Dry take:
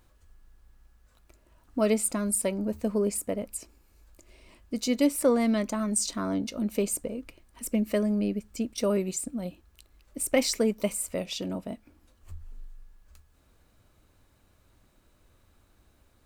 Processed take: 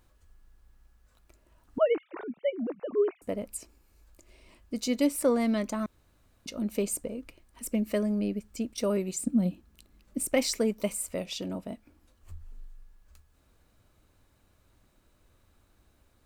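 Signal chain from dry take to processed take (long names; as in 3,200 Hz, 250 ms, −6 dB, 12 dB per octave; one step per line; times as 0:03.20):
0:01.78–0:03.22: three sine waves on the formant tracks
0:05.86–0:06.46: fill with room tone
0:09.19–0:10.28: parametric band 210 Hz +12.5 dB 1.1 octaves
level −2 dB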